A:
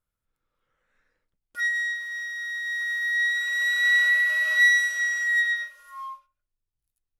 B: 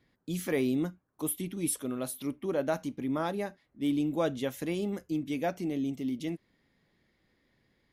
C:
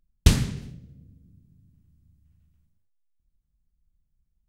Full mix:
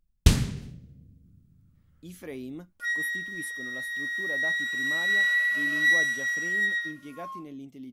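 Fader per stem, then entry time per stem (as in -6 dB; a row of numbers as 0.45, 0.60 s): -3.5, -10.0, -1.5 dB; 1.25, 1.75, 0.00 s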